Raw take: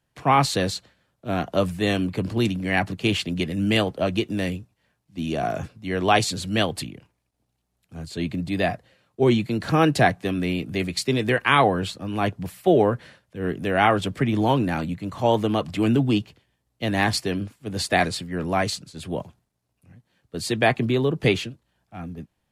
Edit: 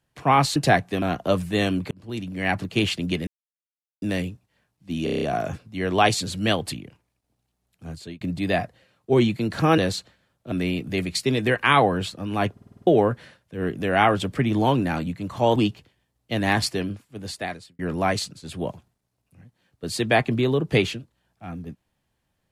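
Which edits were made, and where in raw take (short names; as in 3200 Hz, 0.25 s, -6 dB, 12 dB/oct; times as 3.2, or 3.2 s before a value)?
0.56–1.3 swap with 9.88–10.34
2.19–2.89 fade in
3.55–4.3 mute
5.32 stutter 0.03 s, 7 plays
8–8.31 fade out
12.34 stutter in place 0.05 s, 7 plays
15.38–16.07 cut
17.2–18.3 fade out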